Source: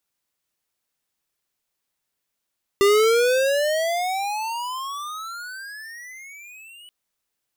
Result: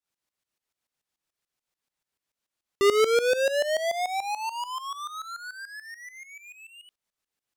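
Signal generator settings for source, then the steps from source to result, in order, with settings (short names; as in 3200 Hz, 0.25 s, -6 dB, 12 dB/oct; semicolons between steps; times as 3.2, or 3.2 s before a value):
gliding synth tone square, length 4.08 s, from 394 Hz, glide +35 st, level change -30 dB, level -15 dB
high shelf 11000 Hz -9 dB; tremolo saw up 6.9 Hz, depth 85%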